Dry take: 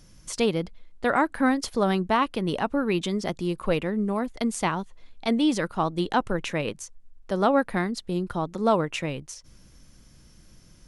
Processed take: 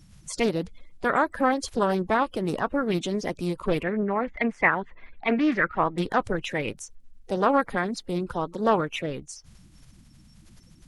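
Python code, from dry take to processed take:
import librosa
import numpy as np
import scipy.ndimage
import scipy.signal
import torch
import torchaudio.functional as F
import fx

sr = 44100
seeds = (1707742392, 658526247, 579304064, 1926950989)

y = fx.spec_quant(x, sr, step_db=30)
y = fx.lowpass_res(y, sr, hz=2000.0, q=3.3, at=(3.83, 5.98))
y = fx.doppler_dist(y, sr, depth_ms=0.26)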